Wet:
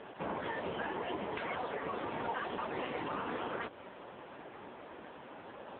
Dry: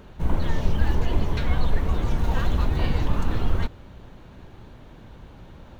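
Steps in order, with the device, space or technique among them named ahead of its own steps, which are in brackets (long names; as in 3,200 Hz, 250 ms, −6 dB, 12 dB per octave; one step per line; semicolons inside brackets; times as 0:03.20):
voicemail (band-pass filter 410–3,100 Hz; downward compressor 8 to 1, threshold −39 dBFS, peak gain reduction 10.5 dB; level +7.5 dB; AMR narrowband 5.9 kbit/s 8,000 Hz)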